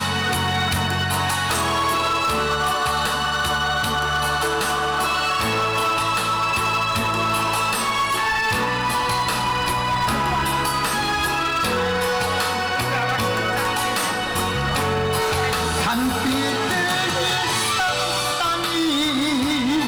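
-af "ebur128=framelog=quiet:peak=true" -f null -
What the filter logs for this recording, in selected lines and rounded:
Integrated loudness:
  I:         -20.3 LUFS
  Threshold: -30.3 LUFS
Loudness range:
  LRA:         1.0 LU
  Threshold: -40.4 LUFS
  LRA low:   -20.9 LUFS
  LRA high:  -19.9 LUFS
True peak:
  Peak:      -12.4 dBFS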